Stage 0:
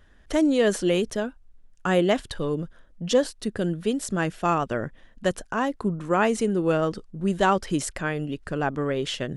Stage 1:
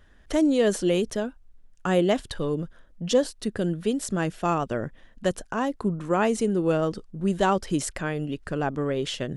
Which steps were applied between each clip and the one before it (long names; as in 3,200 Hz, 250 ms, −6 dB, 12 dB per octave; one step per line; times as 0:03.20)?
dynamic equaliser 1,700 Hz, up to −4 dB, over −35 dBFS, Q 0.76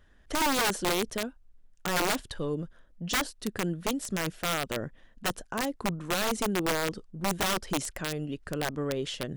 wrap-around overflow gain 17 dB
level −4.5 dB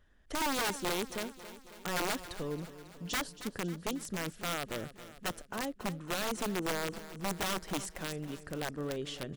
repeating echo 273 ms, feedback 60%, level −14.5 dB
level −6 dB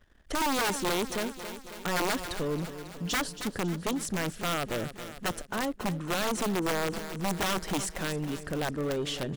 leveller curve on the samples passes 2
level +1.5 dB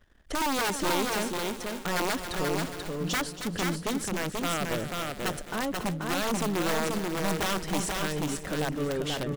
single-tap delay 485 ms −3.5 dB